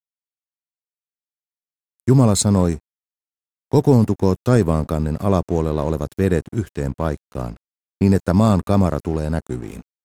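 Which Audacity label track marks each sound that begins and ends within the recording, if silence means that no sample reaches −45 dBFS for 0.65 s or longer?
2.000000	2.790000	sound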